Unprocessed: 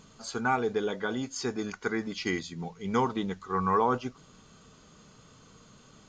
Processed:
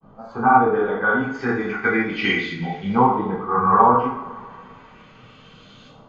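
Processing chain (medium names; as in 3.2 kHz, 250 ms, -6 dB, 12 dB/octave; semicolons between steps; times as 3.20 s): granulator 100 ms, spray 29 ms, pitch spread up and down by 0 st; LFO low-pass saw up 0.34 Hz 870–3600 Hz; two-slope reverb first 0.54 s, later 2.3 s, from -18 dB, DRR -8 dB; trim +1 dB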